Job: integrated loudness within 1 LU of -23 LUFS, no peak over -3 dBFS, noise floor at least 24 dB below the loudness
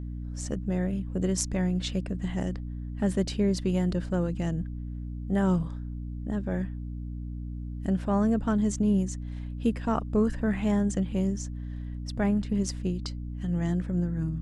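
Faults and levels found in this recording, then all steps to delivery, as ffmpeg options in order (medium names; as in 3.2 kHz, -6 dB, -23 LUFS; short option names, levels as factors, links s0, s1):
hum 60 Hz; highest harmonic 300 Hz; hum level -33 dBFS; loudness -29.5 LUFS; peak level -10.0 dBFS; loudness target -23.0 LUFS
-> -af "bandreject=f=60:t=h:w=6,bandreject=f=120:t=h:w=6,bandreject=f=180:t=h:w=6,bandreject=f=240:t=h:w=6,bandreject=f=300:t=h:w=6"
-af "volume=2.11"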